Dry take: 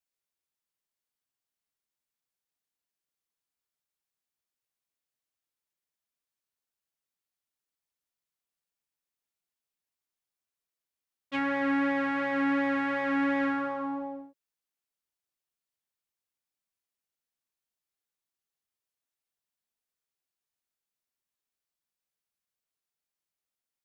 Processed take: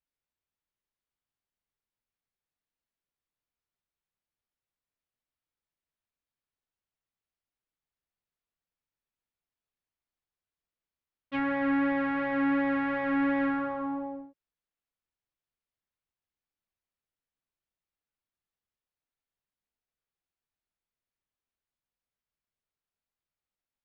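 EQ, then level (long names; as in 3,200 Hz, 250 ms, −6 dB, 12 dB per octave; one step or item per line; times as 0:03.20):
high-frequency loss of the air 210 metres
low-shelf EQ 100 Hz +11 dB
0.0 dB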